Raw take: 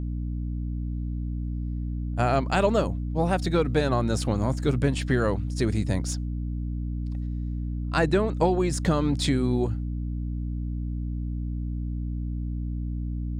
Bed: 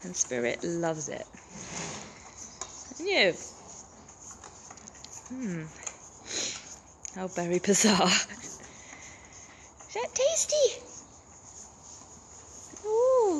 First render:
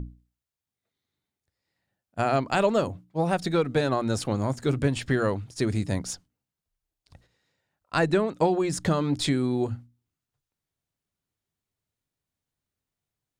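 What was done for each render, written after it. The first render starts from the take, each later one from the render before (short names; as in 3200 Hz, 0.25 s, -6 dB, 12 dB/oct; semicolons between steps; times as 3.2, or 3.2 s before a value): notches 60/120/180/240/300 Hz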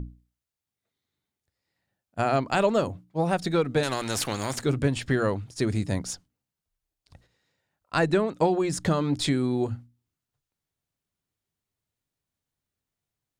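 3.83–4.62 spectral compressor 2:1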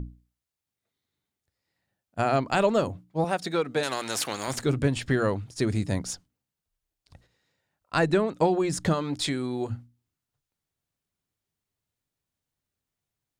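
3.24–4.48 HPF 370 Hz 6 dB/oct; 8.94–9.7 low shelf 370 Hz -7.5 dB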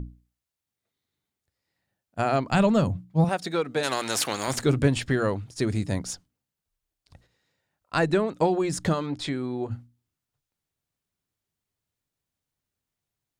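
2.51–3.29 resonant low shelf 250 Hz +8 dB, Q 1.5; 3.84–5.04 gain +3 dB; 9.05–9.7 LPF 3100 Hz -> 1700 Hz 6 dB/oct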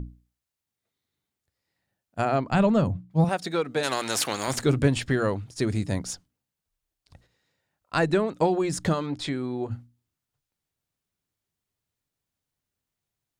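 2.25–3.11 high shelf 3200 Hz -8 dB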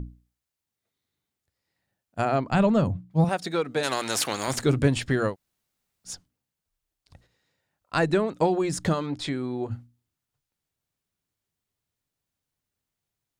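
5.31–6.09 room tone, crossfade 0.10 s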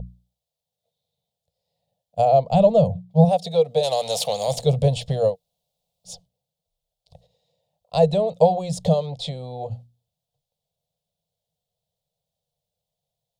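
EQ curve 100 Hz 0 dB, 170 Hz +7 dB, 330 Hz -27 dB, 470 Hz +10 dB, 700 Hz +11 dB, 1500 Hz -25 dB, 3500 Hz +5 dB, 6200 Hz -2 dB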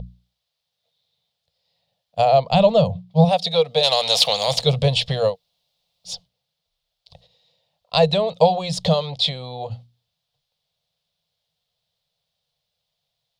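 band shelf 2300 Hz +12.5 dB 2.7 oct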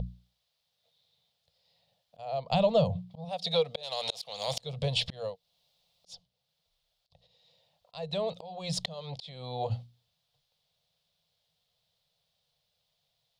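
compressor 2.5:1, threshold -24 dBFS, peak gain reduction 11 dB; auto swell 0.544 s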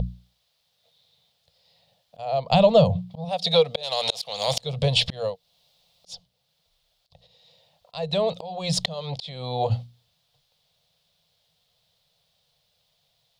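gain +8.5 dB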